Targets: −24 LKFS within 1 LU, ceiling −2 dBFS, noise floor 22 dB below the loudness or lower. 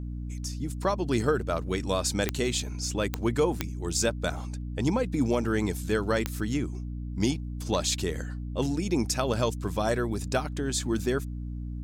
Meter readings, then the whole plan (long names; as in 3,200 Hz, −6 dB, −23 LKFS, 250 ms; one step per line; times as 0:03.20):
number of clicks 4; mains hum 60 Hz; hum harmonics up to 300 Hz; level of the hum −32 dBFS; integrated loudness −29.0 LKFS; sample peak −10.0 dBFS; target loudness −24.0 LKFS
→ click removal
hum removal 60 Hz, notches 5
level +5 dB